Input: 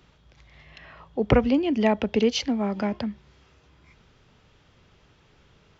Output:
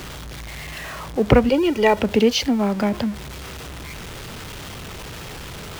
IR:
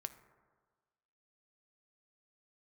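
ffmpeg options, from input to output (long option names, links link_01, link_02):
-filter_complex "[0:a]aeval=exprs='val(0)+0.5*0.02*sgn(val(0))':channel_layout=same,asettb=1/sr,asplit=3[link_01][link_02][link_03];[link_01]atrim=end=1.494[link_04];[link_02]atrim=start=1.49:end=1.99,asetpts=PTS-STARTPTS,afade=type=in:duration=0.004:curve=qsin,afade=type=out:start_time=0.496:duration=0.004:curve=qsin,aecho=1:1:2.1:0.77,atrim=end_sample=22050[link_05];[link_03]atrim=start=1.986[link_06];[link_04][link_05]acrossfade=duration=0.004:curve1=hsin:curve2=qsin[link_07];[link_07][link_06]acrossfade=duration=0.004:curve1=qsin:curve2=hsin,volume=4.5dB"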